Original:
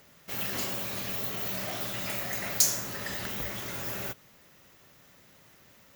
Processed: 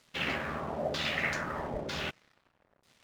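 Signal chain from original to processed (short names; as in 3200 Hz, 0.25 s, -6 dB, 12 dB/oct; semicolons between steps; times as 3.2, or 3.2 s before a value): LFO low-pass saw down 0.54 Hz 510–4700 Hz; crossover distortion -56 dBFS; granular stretch 0.51×, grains 26 ms; gain +4 dB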